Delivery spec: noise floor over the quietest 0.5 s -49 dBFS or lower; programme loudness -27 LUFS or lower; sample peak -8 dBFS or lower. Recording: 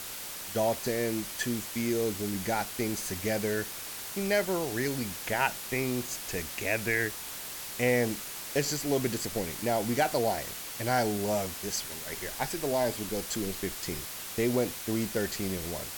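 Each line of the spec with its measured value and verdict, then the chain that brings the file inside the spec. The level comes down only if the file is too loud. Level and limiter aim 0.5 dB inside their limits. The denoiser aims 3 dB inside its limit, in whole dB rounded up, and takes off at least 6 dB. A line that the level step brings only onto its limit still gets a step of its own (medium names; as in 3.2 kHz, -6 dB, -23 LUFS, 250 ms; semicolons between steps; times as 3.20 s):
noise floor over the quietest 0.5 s -40 dBFS: fail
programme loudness -31.0 LUFS: pass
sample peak -12.0 dBFS: pass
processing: noise reduction 12 dB, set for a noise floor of -40 dBFS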